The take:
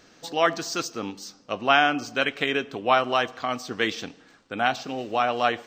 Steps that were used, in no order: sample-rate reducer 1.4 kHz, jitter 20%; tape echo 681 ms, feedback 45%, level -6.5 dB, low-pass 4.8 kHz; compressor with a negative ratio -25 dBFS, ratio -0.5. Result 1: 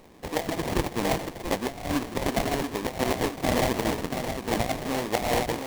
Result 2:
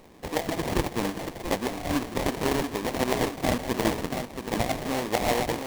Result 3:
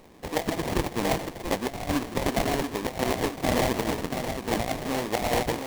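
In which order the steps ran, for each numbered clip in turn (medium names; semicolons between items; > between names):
tape echo > compressor with a negative ratio > sample-rate reducer; compressor with a negative ratio > tape echo > sample-rate reducer; tape echo > sample-rate reducer > compressor with a negative ratio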